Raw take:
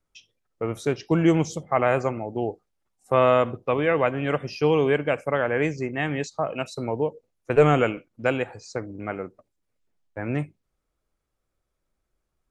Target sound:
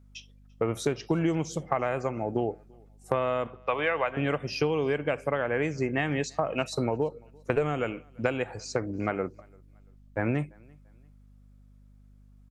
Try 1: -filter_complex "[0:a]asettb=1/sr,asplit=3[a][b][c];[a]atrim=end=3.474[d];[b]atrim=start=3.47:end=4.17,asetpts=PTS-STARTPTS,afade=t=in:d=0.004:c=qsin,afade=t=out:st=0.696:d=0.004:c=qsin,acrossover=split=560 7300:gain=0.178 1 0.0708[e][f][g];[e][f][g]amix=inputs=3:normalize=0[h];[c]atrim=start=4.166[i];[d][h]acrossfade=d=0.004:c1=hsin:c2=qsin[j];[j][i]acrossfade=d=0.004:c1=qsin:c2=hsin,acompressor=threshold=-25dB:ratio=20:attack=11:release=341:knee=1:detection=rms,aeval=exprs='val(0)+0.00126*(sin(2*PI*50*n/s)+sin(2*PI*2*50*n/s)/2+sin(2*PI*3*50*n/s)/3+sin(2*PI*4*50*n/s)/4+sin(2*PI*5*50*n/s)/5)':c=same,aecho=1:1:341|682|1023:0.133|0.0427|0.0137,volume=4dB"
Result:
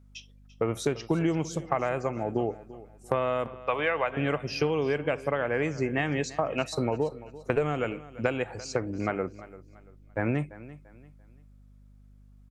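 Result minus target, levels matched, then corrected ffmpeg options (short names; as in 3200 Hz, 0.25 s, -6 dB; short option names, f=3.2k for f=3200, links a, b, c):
echo-to-direct +11 dB
-filter_complex "[0:a]asettb=1/sr,asplit=3[a][b][c];[a]atrim=end=3.474[d];[b]atrim=start=3.47:end=4.17,asetpts=PTS-STARTPTS,afade=t=in:d=0.004:c=qsin,afade=t=out:st=0.696:d=0.004:c=qsin,acrossover=split=560 7300:gain=0.178 1 0.0708[e][f][g];[e][f][g]amix=inputs=3:normalize=0[h];[c]atrim=start=4.166[i];[d][h]acrossfade=d=0.004:c1=hsin:c2=qsin[j];[j][i]acrossfade=d=0.004:c1=qsin:c2=hsin,acompressor=threshold=-25dB:ratio=20:attack=11:release=341:knee=1:detection=rms,aeval=exprs='val(0)+0.00126*(sin(2*PI*50*n/s)+sin(2*PI*2*50*n/s)/2+sin(2*PI*3*50*n/s)/3+sin(2*PI*4*50*n/s)/4+sin(2*PI*5*50*n/s)/5)':c=same,aecho=1:1:341|682:0.0376|0.012,volume=4dB"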